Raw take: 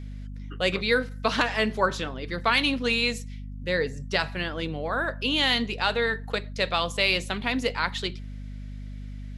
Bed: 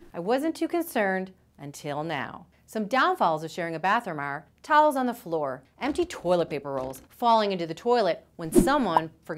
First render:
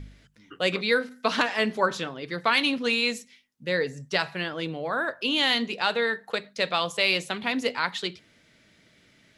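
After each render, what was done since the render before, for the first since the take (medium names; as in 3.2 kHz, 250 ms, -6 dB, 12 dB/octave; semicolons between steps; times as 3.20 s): de-hum 50 Hz, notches 5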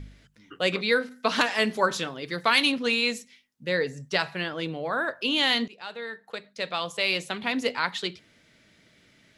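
1.36–2.72 s: treble shelf 5.4 kHz +9 dB; 5.68–7.60 s: fade in, from -18 dB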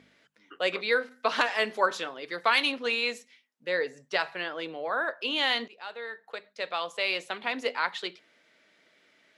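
high-pass 440 Hz 12 dB/octave; treble shelf 4 kHz -10 dB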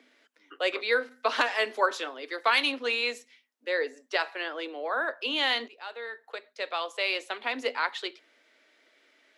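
steep high-pass 240 Hz 72 dB/octave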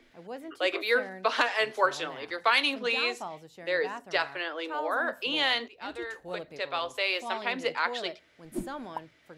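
add bed -15.5 dB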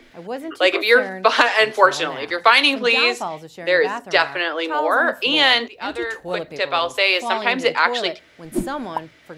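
trim +11.5 dB; peak limiter -1 dBFS, peak gain reduction 2.5 dB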